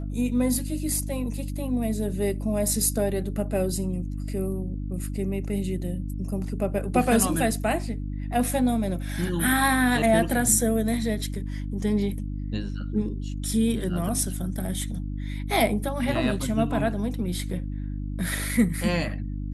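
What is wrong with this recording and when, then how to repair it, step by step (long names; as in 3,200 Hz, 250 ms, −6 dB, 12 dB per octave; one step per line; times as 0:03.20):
mains hum 50 Hz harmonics 6 −31 dBFS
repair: hum removal 50 Hz, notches 6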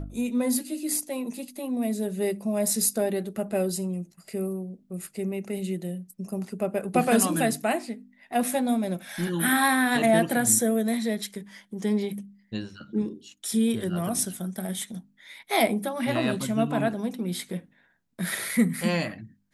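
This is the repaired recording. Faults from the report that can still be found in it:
none of them is left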